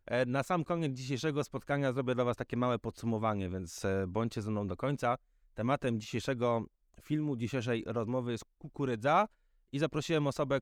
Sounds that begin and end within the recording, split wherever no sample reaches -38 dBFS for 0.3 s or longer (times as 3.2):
5.58–6.65
7.1–9.26